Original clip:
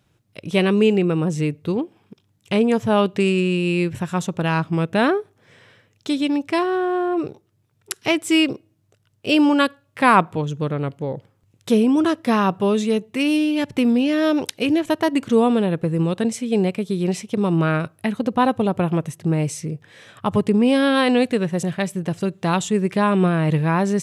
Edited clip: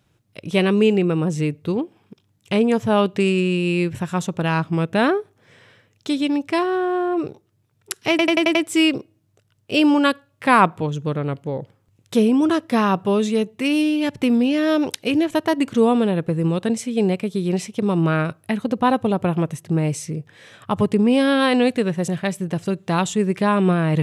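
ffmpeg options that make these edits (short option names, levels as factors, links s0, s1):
-filter_complex "[0:a]asplit=6[s0][s1][s2][s3][s4][s5];[s0]atrim=end=8.192[s6];[s1]atrim=start=8.098:end=8.192[s7];[s2]atrim=start=8.098:end=8.192[s8];[s3]atrim=start=8.098:end=8.192[s9];[s4]atrim=start=8.098:end=8.192[s10];[s5]atrim=start=8.098[s11];[s6][s7]acrossfade=d=0.004:c1=hsin:c2=hsin[s12];[s12][s8]acrossfade=d=0.004:c1=hsin:c2=hsin[s13];[s13][s9]acrossfade=d=0.004:c1=hsin:c2=hsin[s14];[s14][s10]acrossfade=d=0.004:c1=hsin:c2=hsin[s15];[s15][s11]acrossfade=d=0.004:c1=hsin:c2=hsin"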